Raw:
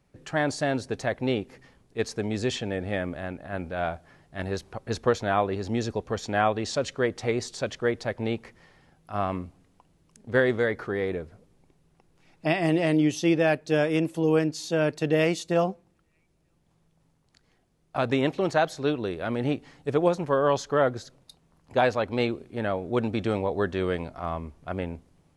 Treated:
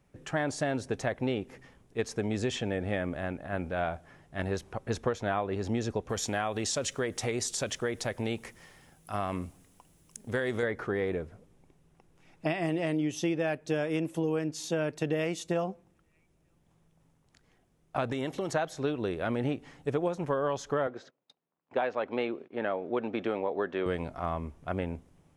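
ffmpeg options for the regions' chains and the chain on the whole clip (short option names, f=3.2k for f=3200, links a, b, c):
-filter_complex "[0:a]asettb=1/sr,asplit=3[a][b][c];[a]atrim=end=6.094[d];[b]atrim=start=6.09:end=10.63,asetpts=PTS-STARTPTS,afade=t=in:d=0.004:c=qsin,afade=t=out:st=4.536:d=0.004:c=qsin,aemphasis=mode=production:type=75kf,acompressor=threshold=-28dB:ratio=2:attack=3.2:release=140:knee=1:detection=peak[e];[c]atrim=start=10.626[f];[d][e]acrossfade=d=0.004:c1=hsin:c2=qsin[g];[g][f]acrossfade=d=0.004:c1=qsin:c2=hsin,asettb=1/sr,asplit=3[h][i][j];[h]atrim=end=18.124[k];[i]atrim=start=18.12:end=18.53,asetpts=PTS-STARTPTS,afade=t=in:d=0.004:c=qsin,afade=t=out:st=0.406:d=0.004:c=qsin,highshelf=f=5.4k:g=11,acompressor=threshold=-30dB:ratio=3:attack=3.2:release=140:knee=1:detection=peak,bandreject=f=2.5k:w=8.3[l];[j]atrim=start=18.526[m];[k][l]acrossfade=d=0.004:c1=hsin:c2=qsin[n];[n][m]acrossfade=d=0.004:c1=qsin:c2=hsin,asettb=1/sr,asplit=3[o][p][q];[o]atrim=end=20.874[r];[p]atrim=start=20.87:end=23.86,asetpts=PTS-STARTPTS,afade=t=in:d=0.004:c=qsin,afade=t=out:st=2.986:d=0.004:c=qsin,agate=range=-19dB:threshold=-51dB:ratio=16:release=100:detection=peak,highpass=280,lowpass=3.2k[s];[q]atrim=start=23.856[t];[r][s]acrossfade=d=0.004:c1=hsin:c2=qsin[u];[u][t]acrossfade=d=0.004:c1=qsin:c2=hsin,equalizer=f=4.4k:w=3.8:g=-6.5,acompressor=threshold=-26dB:ratio=6"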